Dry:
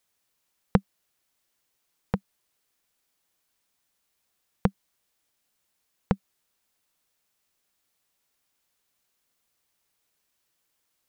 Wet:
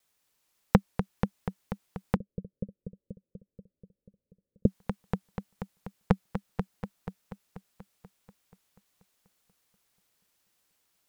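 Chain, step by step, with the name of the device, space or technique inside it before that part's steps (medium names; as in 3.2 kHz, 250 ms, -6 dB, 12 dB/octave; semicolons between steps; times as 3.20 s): multi-head tape echo (multi-head delay 242 ms, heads first and second, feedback 55%, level -10 dB; wow and flutter); 2.16–4.66 s: Chebyshev low-pass 570 Hz, order 6; trim +1 dB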